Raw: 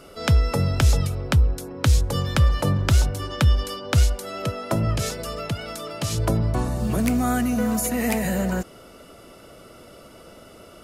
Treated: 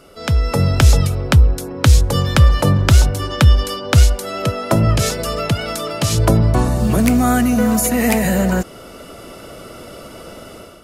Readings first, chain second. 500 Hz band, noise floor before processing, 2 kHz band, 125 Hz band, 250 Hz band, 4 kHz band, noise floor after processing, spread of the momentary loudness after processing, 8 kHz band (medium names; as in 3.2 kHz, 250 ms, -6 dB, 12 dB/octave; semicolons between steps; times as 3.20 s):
+8.0 dB, -47 dBFS, +7.5 dB, +7.5 dB, +7.5 dB, +7.5 dB, -38 dBFS, 9 LU, +7.5 dB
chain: level rider gain up to 10.5 dB